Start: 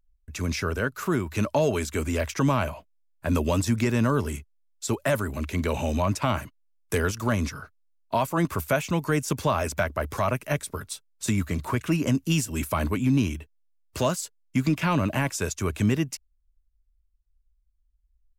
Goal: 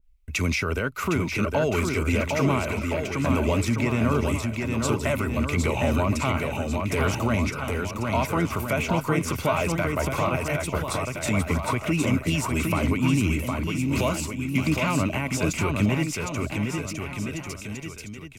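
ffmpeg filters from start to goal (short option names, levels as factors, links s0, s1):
-filter_complex "[0:a]equalizer=f=2300:w=1.6:g=10,bandreject=f=1700:w=5.2,asplit=2[s0][s1];[s1]acompressor=threshold=0.0316:ratio=6,volume=0.891[s2];[s0][s2]amix=inputs=2:normalize=0,alimiter=limit=0.188:level=0:latency=1:release=50,aecho=1:1:760|1368|1854|2244|2555:0.631|0.398|0.251|0.158|0.1,adynamicequalizer=threshold=0.0126:dfrequency=1800:dqfactor=0.7:tfrequency=1800:tqfactor=0.7:attack=5:release=100:ratio=0.375:range=2.5:mode=cutabove:tftype=highshelf"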